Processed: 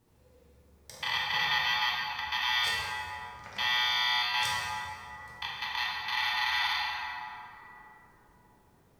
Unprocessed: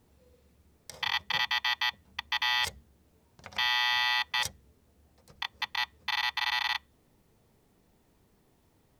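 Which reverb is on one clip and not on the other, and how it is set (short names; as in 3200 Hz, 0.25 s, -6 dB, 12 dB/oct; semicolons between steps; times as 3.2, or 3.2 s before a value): plate-style reverb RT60 3.2 s, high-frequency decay 0.45×, DRR -6.5 dB; gain -4.5 dB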